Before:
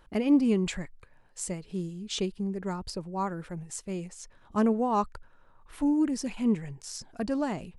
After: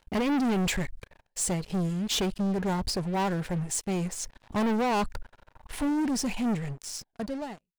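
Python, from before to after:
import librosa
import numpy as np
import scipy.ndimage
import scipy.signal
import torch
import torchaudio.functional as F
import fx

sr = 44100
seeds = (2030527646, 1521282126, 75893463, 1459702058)

y = fx.fade_out_tail(x, sr, length_s=2.04)
y = fx.graphic_eq_31(y, sr, hz=(315, 800, 1250), db=(-6, 3, -11))
y = fx.leveller(y, sr, passes=5)
y = y * 10.0 ** (-7.5 / 20.0)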